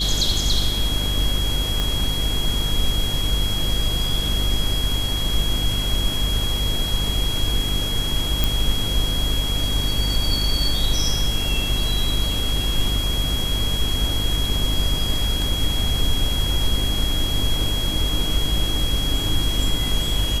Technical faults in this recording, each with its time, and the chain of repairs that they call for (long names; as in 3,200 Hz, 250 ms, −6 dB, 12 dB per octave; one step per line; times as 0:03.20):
mains buzz 50 Hz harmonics 9 −26 dBFS
whistle 3,300 Hz −25 dBFS
0:01.80: click −10 dBFS
0:08.44: click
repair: click removal
hum removal 50 Hz, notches 9
notch filter 3,300 Hz, Q 30